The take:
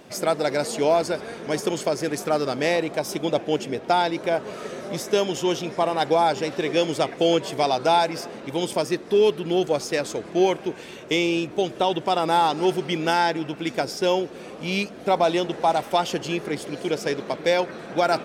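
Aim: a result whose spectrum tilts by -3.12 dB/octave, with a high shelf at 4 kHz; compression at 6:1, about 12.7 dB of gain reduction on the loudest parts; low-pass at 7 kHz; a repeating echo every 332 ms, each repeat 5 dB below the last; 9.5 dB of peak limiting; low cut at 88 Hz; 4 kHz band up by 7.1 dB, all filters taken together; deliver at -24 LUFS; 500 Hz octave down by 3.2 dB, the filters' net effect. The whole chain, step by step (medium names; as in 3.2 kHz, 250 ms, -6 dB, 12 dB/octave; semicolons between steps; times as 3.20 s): high-pass 88 Hz; low-pass 7 kHz; peaking EQ 500 Hz -4.5 dB; treble shelf 4 kHz +5.5 dB; peaking EQ 4 kHz +6.5 dB; compression 6:1, threshold -30 dBFS; peak limiter -22.5 dBFS; feedback delay 332 ms, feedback 56%, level -5 dB; trim +9 dB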